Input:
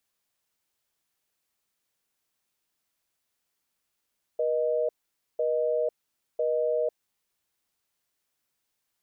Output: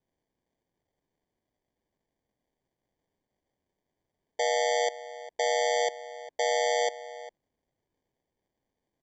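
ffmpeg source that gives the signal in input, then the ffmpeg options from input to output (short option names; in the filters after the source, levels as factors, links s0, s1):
-f lavfi -i "aevalsrc='0.0501*(sin(2*PI*480*t)+sin(2*PI*620*t))*clip(min(mod(t,1),0.5-mod(t,1))/0.005,0,1)':d=2.81:s=44100"
-filter_complex "[0:a]aresample=16000,acrusher=samples=12:mix=1:aa=0.000001,aresample=44100,asplit=2[s0][s1];[s1]adelay=402.3,volume=0.178,highshelf=f=4000:g=-9.05[s2];[s0][s2]amix=inputs=2:normalize=0"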